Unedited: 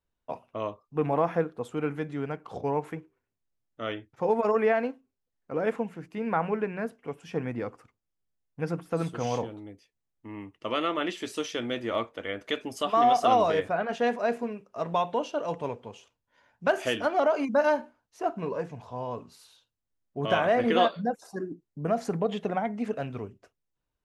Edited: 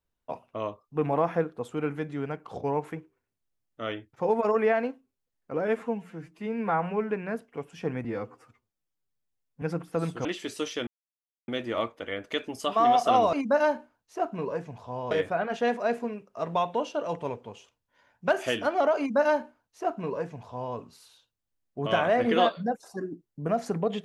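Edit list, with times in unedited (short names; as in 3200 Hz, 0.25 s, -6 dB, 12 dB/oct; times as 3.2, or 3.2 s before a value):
5.62–6.61 stretch 1.5×
7.55–8.6 stretch 1.5×
9.23–11.03 cut
11.65 insert silence 0.61 s
17.37–19.15 copy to 13.5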